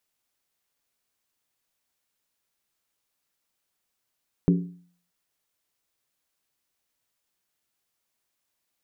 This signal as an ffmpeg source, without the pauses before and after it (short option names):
-f lavfi -i "aevalsrc='0.2*pow(10,-3*t/0.51)*sin(2*PI*176*t)+0.106*pow(10,-3*t/0.404)*sin(2*PI*280.5*t)+0.0562*pow(10,-3*t/0.349)*sin(2*PI*375.9*t)+0.0299*pow(10,-3*t/0.337)*sin(2*PI*404.1*t)+0.0158*pow(10,-3*t/0.313)*sin(2*PI*466.9*t)':d=0.63:s=44100"